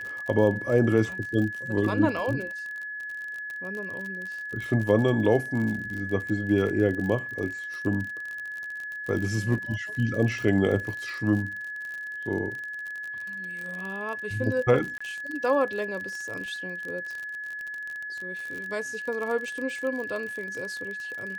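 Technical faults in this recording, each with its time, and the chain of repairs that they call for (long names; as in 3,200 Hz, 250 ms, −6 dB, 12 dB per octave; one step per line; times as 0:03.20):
surface crackle 46 per second −32 dBFS
whistle 1,700 Hz −33 dBFS
0:14.98–0:15.01: drop-out 25 ms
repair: click removal
notch filter 1,700 Hz, Q 30
repair the gap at 0:14.98, 25 ms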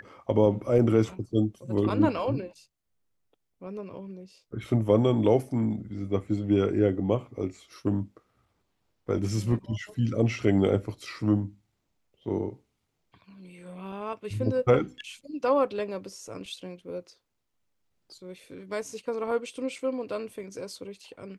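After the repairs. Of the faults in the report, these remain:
none of them is left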